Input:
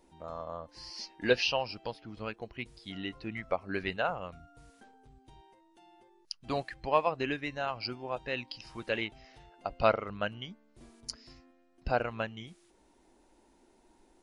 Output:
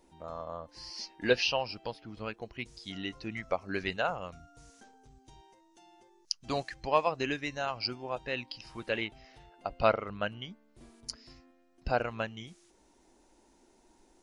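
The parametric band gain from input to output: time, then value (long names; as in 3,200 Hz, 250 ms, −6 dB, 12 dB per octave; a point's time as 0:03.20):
parametric band 6,200 Hz 0.76 octaves
0:02.32 +2 dB
0:02.73 +12 dB
0:07.52 +12 dB
0:08.60 0 dB
0:11.26 0 dB
0:12.10 +6.5 dB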